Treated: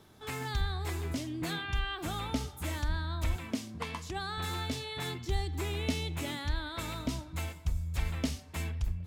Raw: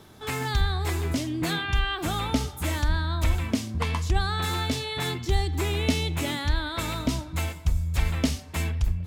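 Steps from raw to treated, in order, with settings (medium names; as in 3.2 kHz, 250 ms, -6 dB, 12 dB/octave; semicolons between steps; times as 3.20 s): 3.36–4.38 s: high-pass 140 Hz 12 dB/octave; trim -8 dB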